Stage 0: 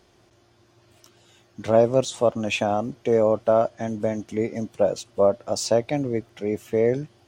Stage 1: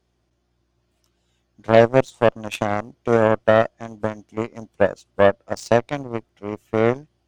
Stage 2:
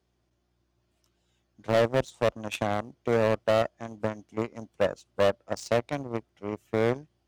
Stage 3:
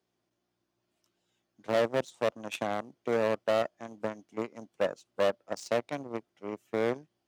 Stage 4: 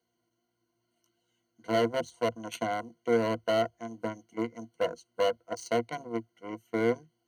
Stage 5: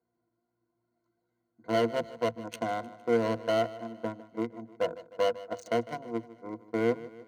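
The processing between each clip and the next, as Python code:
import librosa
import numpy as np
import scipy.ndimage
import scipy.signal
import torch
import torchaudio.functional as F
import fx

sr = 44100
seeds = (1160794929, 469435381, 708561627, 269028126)

y1 = fx.wow_flutter(x, sr, seeds[0], rate_hz=2.1, depth_cents=27.0)
y1 = fx.add_hum(y1, sr, base_hz=60, snr_db=33)
y1 = fx.cheby_harmonics(y1, sr, harmonics=(7,), levels_db=(-18,), full_scale_db=-4.5)
y1 = F.gain(torch.from_numpy(y1), 4.5).numpy()
y2 = scipy.signal.sosfilt(scipy.signal.butter(4, 45.0, 'highpass', fs=sr, output='sos'), y1)
y2 = np.clip(10.0 ** (12.0 / 20.0) * y2, -1.0, 1.0) / 10.0 ** (12.0 / 20.0)
y2 = F.gain(torch.from_numpy(y2), -4.5).numpy()
y3 = scipy.signal.sosfilt(scipy.signal.butter(2, 180.0, 'highpass', fs=sr, output='sos'), y2)
y3 = F.gain(torch.from_numpy(y3), -3.5).numpy()
y4 = fx.ripple_eq(y3, sr, per_octave=1.9, db=17)
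y4 = F.gain(torch.from_numpy(y4), -2.5).numpy()
y5 = fx.wiener(y4, sr, points=15)
y5 = fx.echo_feedback(y5, sr, ms=153, feedback_pct=53, wet_db=-17.0)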